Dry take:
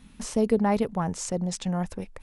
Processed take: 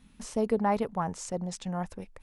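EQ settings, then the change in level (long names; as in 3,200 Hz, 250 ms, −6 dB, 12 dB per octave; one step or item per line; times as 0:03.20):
dynamic equaliser 1,000 Hz, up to +7 dB, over −38 dBFS, Q 0.73
−6.5 dB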